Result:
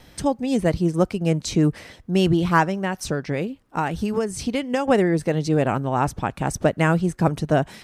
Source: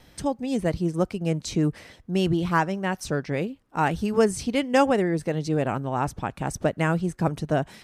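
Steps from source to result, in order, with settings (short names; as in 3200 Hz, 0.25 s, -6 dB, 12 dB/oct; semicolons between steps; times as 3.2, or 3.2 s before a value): 2.68–4.88 compressor 10:1, threshold -24 dBFS, peak gain reduction 11 dB; gain +4.5 dB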